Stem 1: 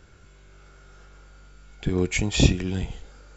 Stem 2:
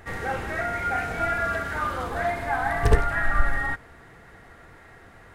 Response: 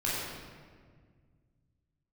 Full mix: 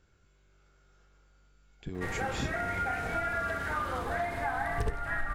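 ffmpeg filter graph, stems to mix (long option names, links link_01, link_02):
-filter_complex "[0:a]volume=-14dB[link_01];[1:a]adelay=1950,volume=-2.5dB[link_02];[link_01][link_02]amix=inputs=2:normalize=0,acompressor=threshold=-29dB:ratio=4"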